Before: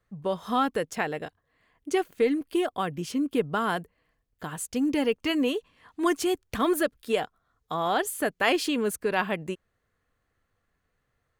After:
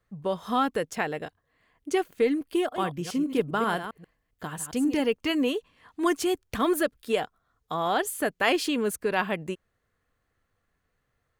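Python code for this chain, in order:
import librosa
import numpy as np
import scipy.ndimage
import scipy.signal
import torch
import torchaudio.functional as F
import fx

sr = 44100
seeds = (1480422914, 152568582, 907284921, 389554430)

y = fx.reverse_delay(x, sr, ms=134, wet_db=-9.0, at=(2.57, 5.0))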